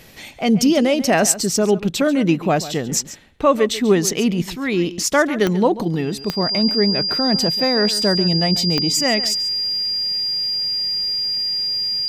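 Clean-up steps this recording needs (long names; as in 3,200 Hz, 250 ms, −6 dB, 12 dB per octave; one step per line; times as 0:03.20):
click removal
notch filter 4,800 Hz, Q 30
echo removal 139 ms −15.5 dB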